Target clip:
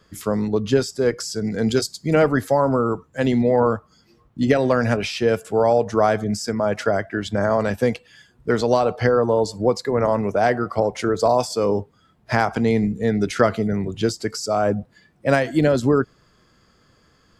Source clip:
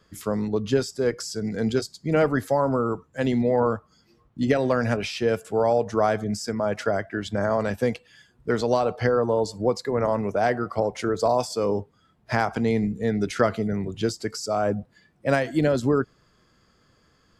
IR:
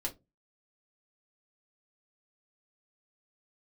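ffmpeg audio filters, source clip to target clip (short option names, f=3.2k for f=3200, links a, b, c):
-filter_complex "[0:a]asettb=1/sr,asplit=3[a][b][c];[a]atrim=end=1.684[d];[b]atrim=start=1.68:end=2.16,asetpts=PTS-STARTPTS,afade=t=in:d=0.004:c=qsin,afade=t=out:st=0.476:d=0.004:c=qsin,highshelf=f=4k:g=7.5[e];[c]atrim=start=2.156[f];[d][e]acrossfade=d=0.004:c1=hsin:c2=qsin[g];[g][f]acrossfade=d=0.004:c1=qsin:c2=hsin,volume=4dB"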